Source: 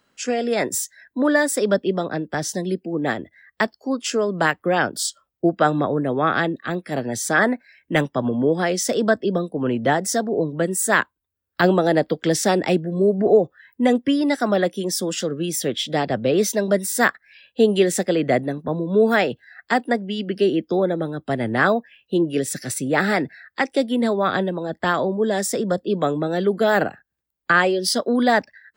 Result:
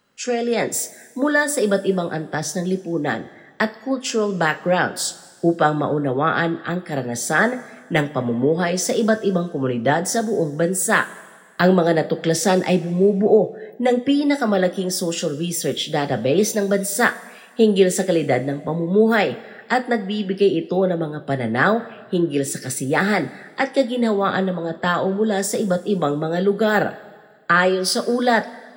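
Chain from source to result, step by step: two-slope reverb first 0.21 s, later 1.7 s, from -18 dB, DRR 7 dB

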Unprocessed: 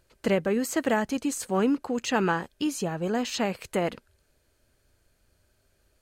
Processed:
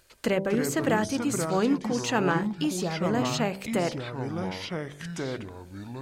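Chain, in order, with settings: de-hum 64.7 Hz, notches 15; echoes that change speed 0.178 s, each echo -5 st, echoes 2, each echo -6 dB; mismatched tape noise reduction encoder only

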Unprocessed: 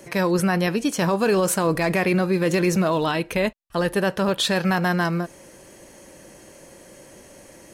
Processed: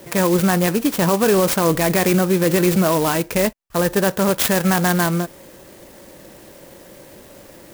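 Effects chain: clock jitter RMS 0.071 ms; gain +4 dB

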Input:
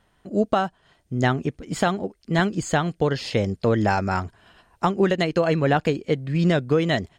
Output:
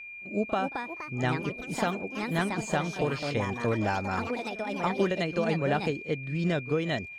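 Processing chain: echoes that change speed 0.334 s, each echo +4 st, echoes 3, each echo -6 dB; whine 2400 Hz -33 dBFS; reverse echo 38 ms -16.5 dB; gain -8 dB

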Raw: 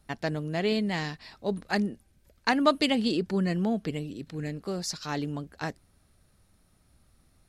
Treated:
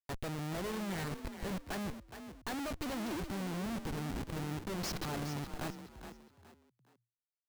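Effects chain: bin magnitudes rounded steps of 15 dB; compressor 2.5:1, threshold -35 dBFS, peak gain reduction 12.5 dB; Schmitt trigger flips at -39.5 dBFS; frequency-shifting echo 0.418 s, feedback 31%, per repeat +39 Hz, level -10 dB

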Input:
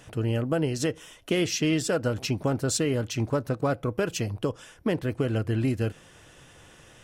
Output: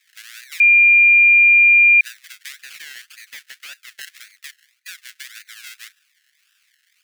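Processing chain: decimation with a swept rate 29×, swing 60% 1.8 Hz; steep high-pass 1600 Hz 48 dB/oct; 0.6–2.01 bleep 2400 Hz -7.5 dBFS; 2.6–4.01 hard clip -29.5 dBFS, distortion -15 dB

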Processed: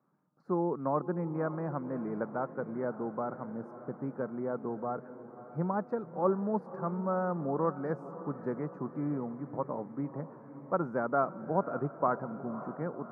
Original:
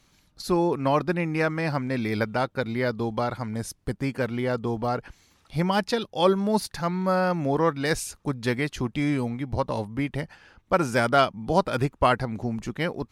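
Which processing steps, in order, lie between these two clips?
elliptic band-pass 150–1300 Hz, stop band 40 dB; diffused feedback echo 0.563 s, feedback 62%, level -14 dB; gain -7.5 dB

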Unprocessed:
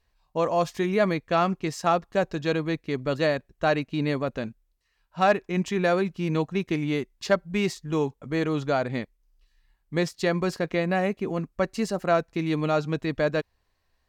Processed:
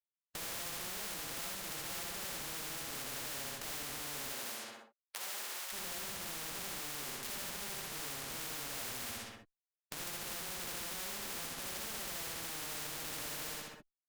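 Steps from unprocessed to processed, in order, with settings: bin magnitudes rounded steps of 15 dB; LPF 1400 Hz 12 dB/oct; fuzz box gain 42 dB, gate -47 dBFS; flutter echo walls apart 10.8 m, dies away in 0.32 s; tube stage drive 42 dB, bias 0.6; compressor 6:1, threshold -52 dBFS, peak gain reduction 10 dB; 4.24–5.72 HPF 270 Hz -> 1000 Hz 24 dB/oct; non-linear reverb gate 0.1 s rising, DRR -3.5 dB; spectral compressor 4:1; gain +13 dB

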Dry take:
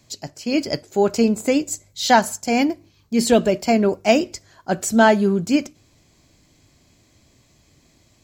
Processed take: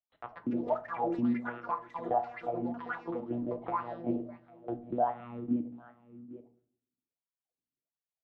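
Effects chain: tilt shelf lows +9 dB, about 750 Hz; gate -39 dBFS, range -43 dB; EQ curve 190 Hz 0 dB, 420 Hz -22 dB, 670 Hz +4 dB, 950 Hz -2 dB; in parallel at -6.5 dB: bit-crush 4-bit; on the sum: compressor 2.5:1, threshold -21 dBFS, peak gain reduction 11.5 dB; monotone LPC vocoder at 8 kHz 120 Hz; on a send: echo 0.8 s -22 dB; on the sum: wah 1.4 Hz 250–1400 Hz, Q 5.9; shoebox room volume 370 m³, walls furnished, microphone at 0.66 m; echoes that change speed 0.2 s, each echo +6 st, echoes 3, each echo -6 dB; three-band squash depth 40%

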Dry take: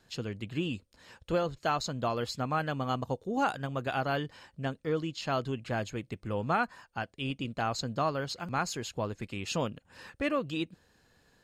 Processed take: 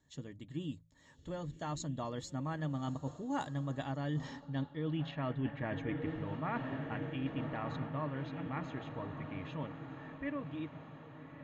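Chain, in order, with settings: Doppler pass-by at 4.81, 8 m/s, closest 4.8 m; ripple EQ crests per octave 1.1, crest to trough 10 dB; diffused feedback echo 1.257 s, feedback 57%, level -13 dB; low-pass sweep 7700 Hz -> 2300 Hz, 4.05–5.15; tilt -2 dB/oct; reverse; compressor 10:1, threshold -38 dBFS, peak gain reduction 18.5 dB; reverse; notch comb 510 Hz; de-hum 53.94 Hz, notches 3; gain +6 dB

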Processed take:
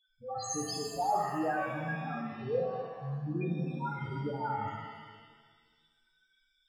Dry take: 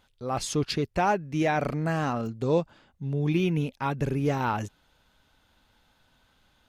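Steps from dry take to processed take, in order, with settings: tilt shelf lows -8 dB, about 1300 Hz; loudest bins only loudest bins 2; shimmer reverb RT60 1.5 s, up +7 st, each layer -8 dB, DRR -1 dB

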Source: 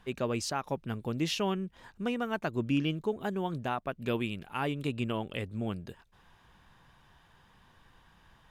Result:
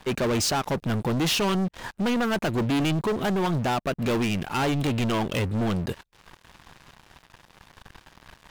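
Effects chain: sample leveller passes 5; gain -1.5 dB

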